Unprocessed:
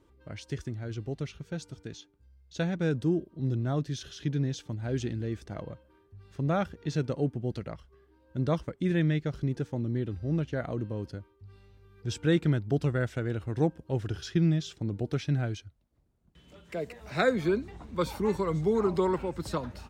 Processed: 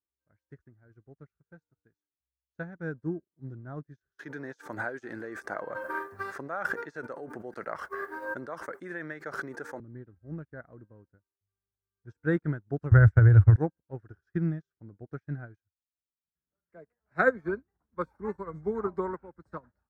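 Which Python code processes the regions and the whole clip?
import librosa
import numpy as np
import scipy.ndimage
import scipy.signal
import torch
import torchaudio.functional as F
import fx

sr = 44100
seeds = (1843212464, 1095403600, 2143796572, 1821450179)

y = fx.chain(x, sr, fx.highpass(hz=530.0, slope=12),
    fx.high_shelf(hz=7600.0, db=10.5),
    fx.env_flatten(amount_pct=100), at=(4.19, 9.8))
y = fx.chain(y, sr, fx.low_shelf_res(hz=140.0, db=13.0, q=3.0),
    fx.band_squash(depth_pct=100), at=(12.91, 13.56))
y = fx.high_shelf_res(y, sr, hz=2200.0, db=-11.5, q=3.0)
y = fx.upward_expand(y, sr, threshold_db=-46.0, expansion=2.5)
y = F.gain(torch.from_numpy(y), 5.0).numpy()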